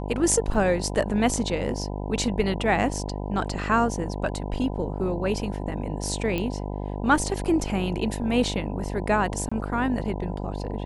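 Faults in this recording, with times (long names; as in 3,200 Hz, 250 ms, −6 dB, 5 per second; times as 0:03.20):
mains buzz 50 Hz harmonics 20 −31 dBFS
0:00.54: drop-out 4.1 ms
0:06.38: click −15 dBFS
0:09.49–0:09.52: drop-out 25 ms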